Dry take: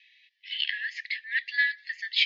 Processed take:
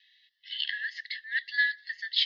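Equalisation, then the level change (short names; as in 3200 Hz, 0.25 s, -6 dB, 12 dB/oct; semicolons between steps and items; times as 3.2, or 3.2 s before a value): fixed phaser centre 2400 Hz, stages 6; +1.0 dB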